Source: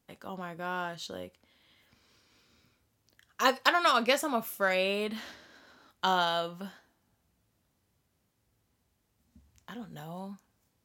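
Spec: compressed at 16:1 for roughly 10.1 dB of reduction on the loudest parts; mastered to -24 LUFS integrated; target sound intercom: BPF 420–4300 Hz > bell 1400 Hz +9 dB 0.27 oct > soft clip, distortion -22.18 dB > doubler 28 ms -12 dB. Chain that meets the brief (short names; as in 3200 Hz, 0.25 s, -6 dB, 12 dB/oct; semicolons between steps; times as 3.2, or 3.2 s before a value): compressor 16:1, threshold -29 dBFS; BPF 420–4300 Hz; bell 1400 Hz +9 dB 0.27 oct; soft clip -19 dBFS; doubler 28 ms -12 dB; gain +11 dB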